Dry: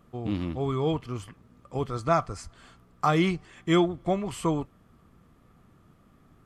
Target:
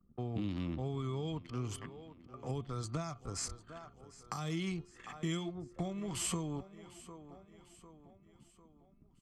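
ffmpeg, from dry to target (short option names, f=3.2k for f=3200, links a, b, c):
-filter_complex "[0:a]adynamicequalizer=threshold=0.00224:dfrequency=6800:dqfactor=1.4:tfrequency=6800:tqfactor=1.4:attack=5:release=100:ratio=0.375:range=2.5:mode=boostabove:tftype=bell,acompressor=threshold=-32dB:ratio=4,atempo=0.7,anlmdn=0.00631,lowshelf=f=110:g=-7,aecho=1:1:750|1500|2250|3000:0.106|0.0508|0.0244|0.0117,acrossover=split=220|3000[a][b][c];[b]acompressor=threshold=-44dB:ratio=6[d];[a][d][c]amix=inputs=3:normalize=0,bandreject=f=356:t=h:w=4,bandreject=f=712:t=h:w=4,bandreject=f=1.068k:t=h:w=4,bandreject=f=1.424k:t=h:w=4,bandreject=f=1.78k:t=h:w=4,bandreject=f=2.136k:t=h:w=4,bandreject=f=2.492k:t=h:w=4,bandreject=f=2.848k:t=h:w=4,bandreject=f=3.204k:t=h:w=4,bandreject=f=3.56k:t=h:w=4,bandreject=f=3.916k:t=h:w=4,bandreject=f=4.272k:t=h:w=4,bandreject=f=4.628k:t=h:w=4,volume=2.5dB"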